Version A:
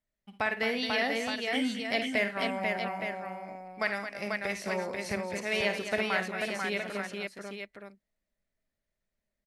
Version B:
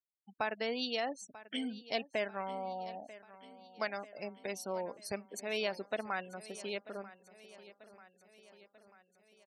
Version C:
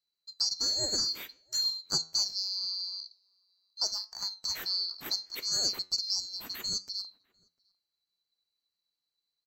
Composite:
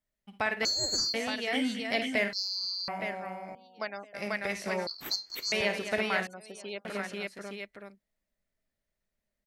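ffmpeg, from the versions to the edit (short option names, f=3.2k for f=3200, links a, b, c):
-filter_complex "[2:a]asplit=3[a][b][c];[1:a]asplit=2[d][e];[0:a]asplit=6[f][g][h][i][j][k];[f]atrim=end=0.652[l];[a]atrim=start=0.648:end=1.142[m];[g]atrim=start=1.138:end=2.332[n];[b]atrim=start=2.328:end=2.882[o];[h]atrim=start=2.878:end=3.552[p];[d]atrim=start=3.548:end=4.142[q];[i]atrim=start=4.138:end=4.872[r];[c]atrim=start=4.868:end=5.522[s];[j]atrim=start=5.518:end=6.272[t];[e]atrim=start=6.268:end=6.852[u];[k]atrim=start=6.848[v];[l][m]acrossfade=d=0.004:c1=hsin:c2=hsin[w];[w][n]acrossfade=d=0.004:c1=hsin:c2=hsin[x];[x][o]acrossfade=d=0.004:c1=hsin:c2=hsin[y];[y][p]acrossfade=d=0.004:c1=hsin:c2=hsin[z];[z][q]acrossfade=d=0.004:c1=hsin:c2=hsin[aa];[aa][r]acrossfade=d=0.004:c1=hsin:c2=hsin[ab];[ab][s]acrossfade=d=0.004:c1=hsin:c2=hsin[ac];[ac][t]acrossfade=d=0.004:c1=hsin:c2=hsin[ad];[ad][u]acrossfade=d=0.004:c1=hsin:c2=hsin[ae];[ae][v]acrossfade=d=0.004:c1=hsin:c2=hsin"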